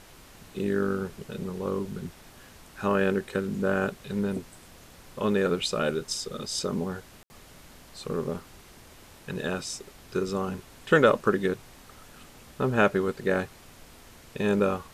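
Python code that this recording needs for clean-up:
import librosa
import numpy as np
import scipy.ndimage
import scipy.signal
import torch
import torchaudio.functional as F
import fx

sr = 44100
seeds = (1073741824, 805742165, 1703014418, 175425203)

y = fx.fix_ambience(x, sr, seeds[0], print_start_s=8.61, print_end_s=9.11, start_s=7.23, end_s=7.3)
y = fx.noise_reduce(y, sr, print_start_s=8.61, print_end_s=9.11, reduce_db=22.0)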